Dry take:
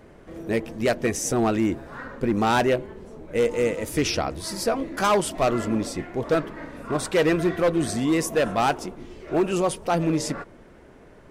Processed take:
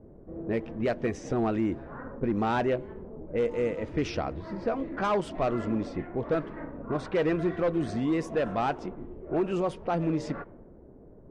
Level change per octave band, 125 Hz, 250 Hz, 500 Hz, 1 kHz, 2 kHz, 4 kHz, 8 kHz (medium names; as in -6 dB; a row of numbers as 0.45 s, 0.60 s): -4.0 dB, -4.5 dB, -5.5 dB, -6.5 dB, -8.5 dB, -13.0 dB, under -20 dB